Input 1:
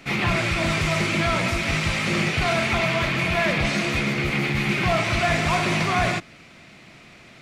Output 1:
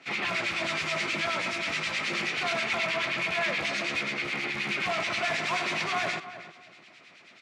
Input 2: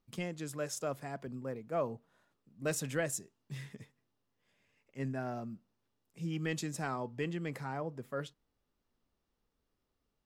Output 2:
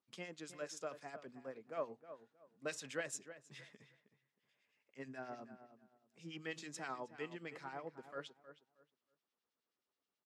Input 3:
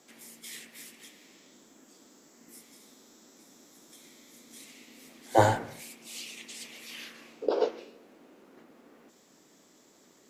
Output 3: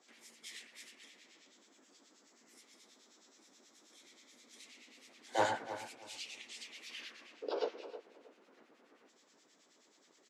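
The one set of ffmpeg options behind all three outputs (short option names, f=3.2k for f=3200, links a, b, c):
-filter_complex "[0:a]equalizer=f=470:w=0.4:g=-5.5,acrossover=split=1600[a][b];[a]aeval=exprs='val(0)*(1-0.7/2+0.7/2*cos(2*PI*9.4*n/s))':c=same[c];[b]aeval=exprs='val(0)*(1-0.7/2-0.7/2*cos(2*PI*9.4*n/s))':c=same[d];[c][d]amix=inputs=2:normalize=0,asplit=2[e][f];[f]aeval=exprs='(mod(10.6*val(0)+1,2)-1)/10.6':c=same,volume=-12dB[g];[e][g]amix=inputs=2:normalize=0,highpass=320,lowpass=6k,asplit=2[h][i];[i]adelay=315,lowpass=f=2.2k:p=1,volume=-12dB,asplit=2[j][k];[k]adelay=315,lowpass=f=2.2k:p=1,volume=0.24,asplit=2[l][m];[m]adelay=315,lowpass=f=2.2k:p=1,volume=0.24[n];[h][j][l][n]amix=inputs=4:normalize=0,volume=-1.5dB"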